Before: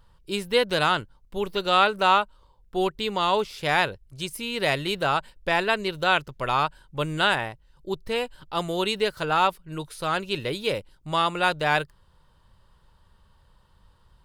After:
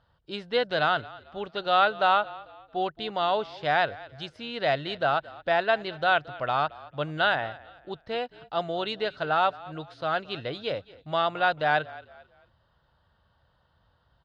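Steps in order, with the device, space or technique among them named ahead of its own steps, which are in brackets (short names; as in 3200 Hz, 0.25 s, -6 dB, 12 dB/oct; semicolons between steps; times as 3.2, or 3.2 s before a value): frequency-shifting delay pedal into a guitar cabinet (frequency-shifting echo 0.222 s, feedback 36%, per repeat -36 Hz, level -20 dB; speaker cabinet 77–4400 Hz, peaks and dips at 190 Hz -5 dB, 390 Hz -5 dB, 690 Hz +9 dB, 990 Hz -5 dB, 1500 Hz +4 dB, 2400 Hz -6 dB); gain -3.5 dB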